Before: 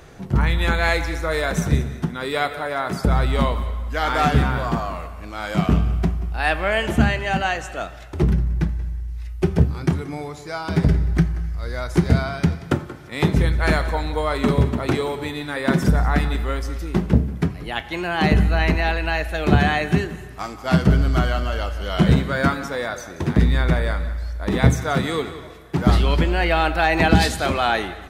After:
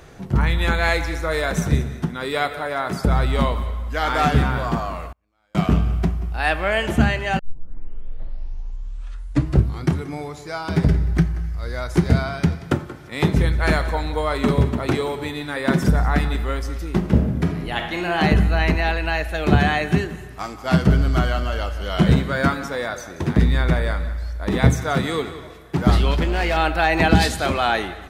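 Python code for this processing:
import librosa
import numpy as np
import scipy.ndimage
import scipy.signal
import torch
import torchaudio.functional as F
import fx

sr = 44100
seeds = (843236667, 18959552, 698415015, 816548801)

y = fx.gate_flip(x, sr, shuts_db=-29.0, range_db=-38, at=(5.11, 5.55))
y = fx.reverb_throw(y, sr, start_s=16.98, length_s=1.2, rt60_s=0.99, drr_db=3.0)
y = fx.clip_hard(y, sr, threshold_db=-16.0, at=(26.11, 26.57))
y = fx.edit(y, sr, fx.tape_start(start_s=7.39, length_s=2.55), tone=tone)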